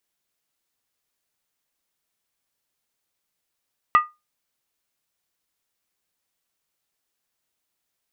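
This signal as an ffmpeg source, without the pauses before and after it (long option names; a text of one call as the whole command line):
ffmpeg -f lavfi -i "aevalsrc='0.398*pow(10,-3*t/0.22)*sin(2*PI*1220*t)+0.133*pow(10,-3*t/0.174)*sin(2*PI*1944.7*t)+0.0447*pow(10,-3*t/0.151)*sin(2*PI*2605.9*t)+0.015*pow(10,-3*t/0.145)*sin(2*PI*2801.1*t)+0.00501*pow(10,-3*t/0.135)*sin(2*PI*3236.7*t)':duration=0.63:sample_rate=44100" out.wav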